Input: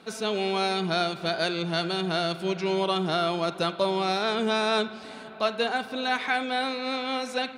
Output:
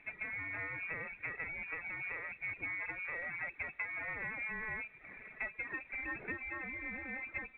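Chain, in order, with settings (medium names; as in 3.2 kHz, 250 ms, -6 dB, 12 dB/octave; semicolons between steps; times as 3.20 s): comb filter that takes the minimum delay 0.35 ms; reverb removal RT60 0.56 s; peaking EQ 170 Hz -8 dB 0.32 oct; compression 6:1, threshold -31 dBFS, peak gain reduction 10 dB; frequency inversion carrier 2.6 kHz; trim -6 dB; µ-law 64 kbps 8 kHz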